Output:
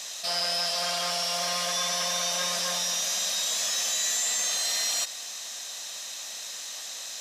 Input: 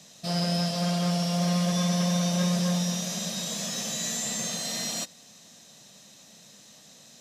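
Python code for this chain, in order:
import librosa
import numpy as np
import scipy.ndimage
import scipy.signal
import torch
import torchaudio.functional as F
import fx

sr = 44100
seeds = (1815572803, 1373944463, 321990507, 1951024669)

y = scipy.signal.sosfilt(scipy.signal.butter(2, 910.0, 'highpass', fs=sr, output='sos'), x)
y = fx.env_flatten(y, sr, amount_pct=50)
y = y * 10.0 ** (4.0 / 20.0)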